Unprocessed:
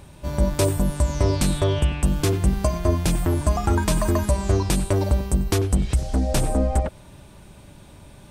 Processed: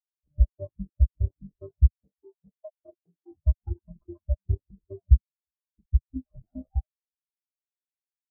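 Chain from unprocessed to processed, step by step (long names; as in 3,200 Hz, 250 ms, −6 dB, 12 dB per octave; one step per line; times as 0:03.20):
reverb reduction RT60 0.61 s
harmonic generator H 3 −24 dB, 7 −13 dB, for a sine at −9 dBFS
0:01.90–0:03.31: high-pass filter 370 Hz 6 dB per octave
0:05.27–0:05.78: first difference
in parallel at +1 dB: downward compressor, threshold −26 dBFS, peak gain reduction 12 dB
on the sum: Chebyshev low-pass filter 1,600 Hz, order 10
bit reduction 5 bits
on a send: single-tap delay 356 ms −22.5 dB
on the sum: every bin expanded away from the loudest bin 4 to 1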